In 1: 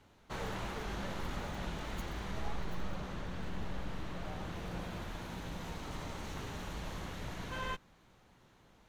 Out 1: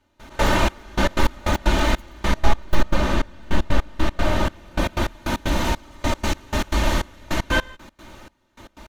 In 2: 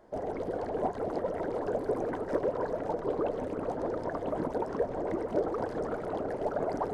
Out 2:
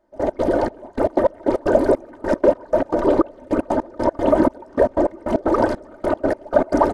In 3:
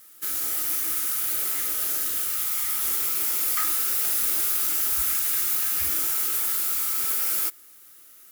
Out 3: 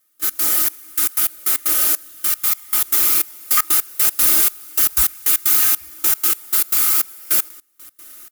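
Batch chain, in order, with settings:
comb 3.3 ms, depth 68%; trance gate "..x.xxx...x.x" 154 bpm -24 dB; peak normalisation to -1.5 dBFS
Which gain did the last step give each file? +20.0 dB, +15.0 dB, +8.5 dB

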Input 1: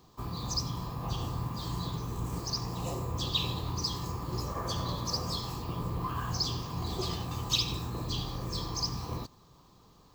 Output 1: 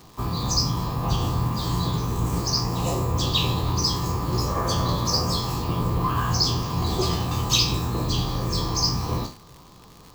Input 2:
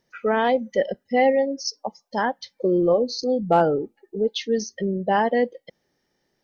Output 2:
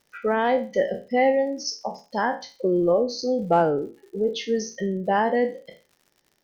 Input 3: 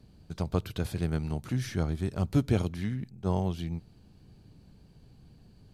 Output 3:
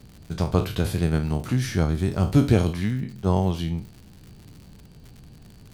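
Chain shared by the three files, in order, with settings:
spectral sustain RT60 0.32 s; dynamic bell 3.7 kHz, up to -5 dB, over -44 dBFS, Q 1.9; crackle 110 per s -44 dBFS; normalise loudness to -24 LUFS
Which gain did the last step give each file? +9.5 dB, -1.5 dB, +7.0 dB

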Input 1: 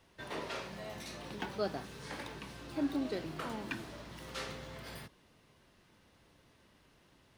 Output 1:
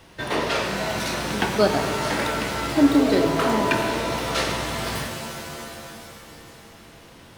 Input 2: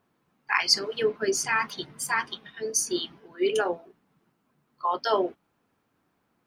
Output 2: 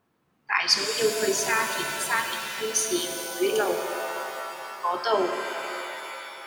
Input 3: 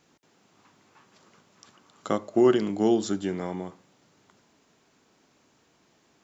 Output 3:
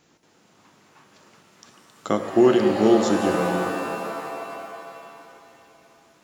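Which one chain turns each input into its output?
pitch-shifted reverb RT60 2.9 s, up +7 st, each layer -2 dB, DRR 5.5 dB; peak normalisation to -6 dBFS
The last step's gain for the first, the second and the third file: +16.0 dB, 0.0 dB, +3.5 dB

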